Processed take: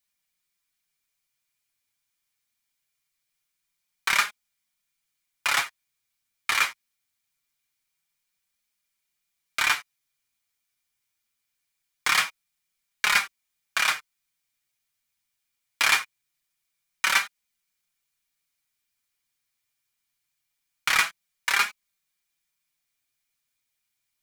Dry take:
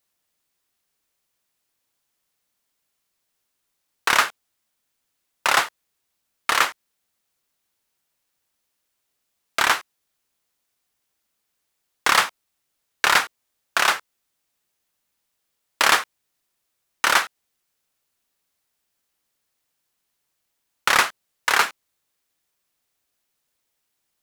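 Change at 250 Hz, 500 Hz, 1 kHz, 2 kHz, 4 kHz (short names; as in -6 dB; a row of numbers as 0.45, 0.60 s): -10.5, -13.5, -8.0, -3.0, -3.5 dB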